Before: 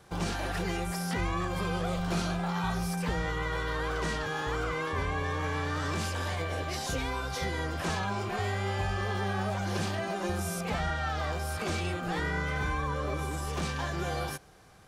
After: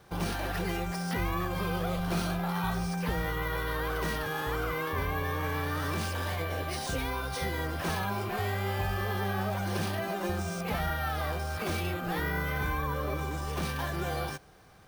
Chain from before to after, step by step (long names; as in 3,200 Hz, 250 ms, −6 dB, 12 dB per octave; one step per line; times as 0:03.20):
bad sample-rate conversion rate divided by 3×, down filtered, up hold